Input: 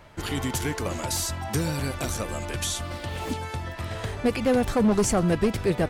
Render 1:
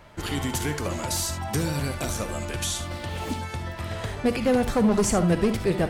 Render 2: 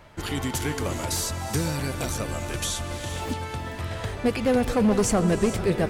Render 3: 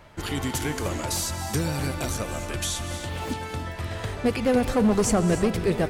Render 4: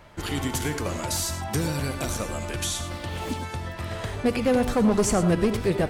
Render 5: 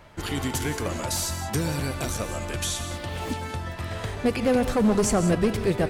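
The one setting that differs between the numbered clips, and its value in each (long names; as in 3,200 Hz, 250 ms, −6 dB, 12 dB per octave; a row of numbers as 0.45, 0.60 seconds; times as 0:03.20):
reverb whose tail is shaped and stops, gate: 90, 490, 330, 130, 210 milliseconds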